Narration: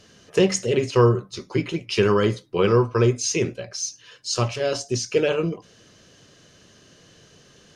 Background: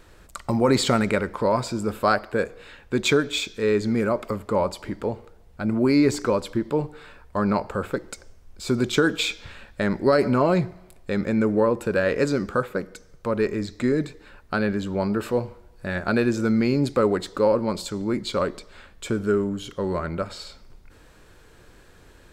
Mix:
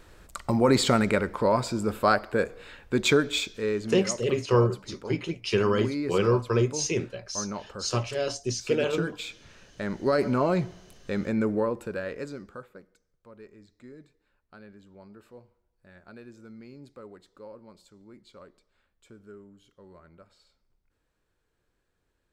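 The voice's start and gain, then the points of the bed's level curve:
3.55 s, −5.0 dB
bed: 0:03.38 −1.5 dB
0:04.08 −12.5 dB
0:09.49 −12.5 dB
0:10.20 −4.5 dB
0:11.47 −4.5 dB
0:13.12 −25.5 dB

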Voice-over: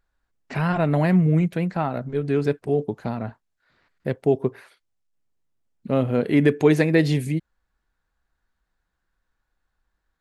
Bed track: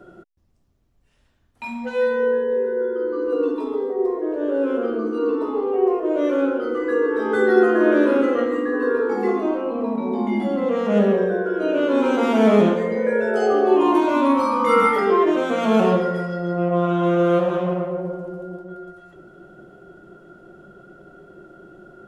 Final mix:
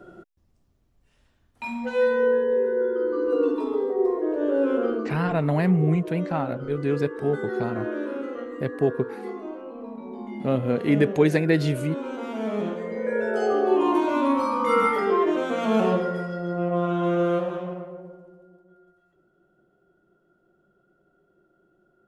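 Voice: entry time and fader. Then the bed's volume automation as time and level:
4.55 s, −2.5 dB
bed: 0:04.91 −1 dB
0:05.28 −13.5 dB
0:12.54 −13.5 dB
0:13.21 −4.5 dB
0:17.22 −4.5 dB
0:18.51 −20 dB

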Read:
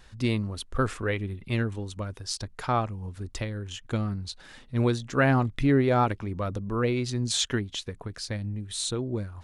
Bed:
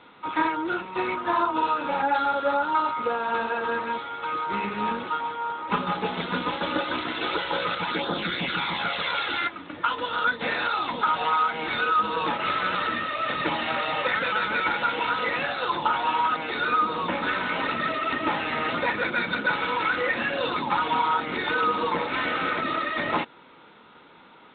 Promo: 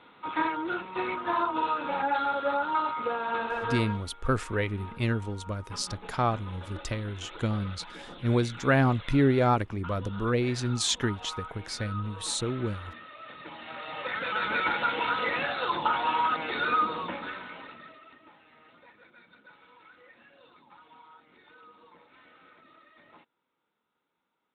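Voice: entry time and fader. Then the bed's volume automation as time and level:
3.50 s, −0.5 dB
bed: 0:03.80 −4 dB
0:04.10 −18 dB
0:13.47 −18 dB
0:14.50 −2.5 dB
0:16.82 −2.5 dB
0:18.31 −30.5 dB

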